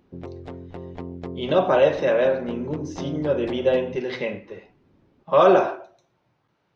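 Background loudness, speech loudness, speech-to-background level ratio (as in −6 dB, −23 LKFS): −37.0 LKFS, −21.5 LKFS, 15.5 dB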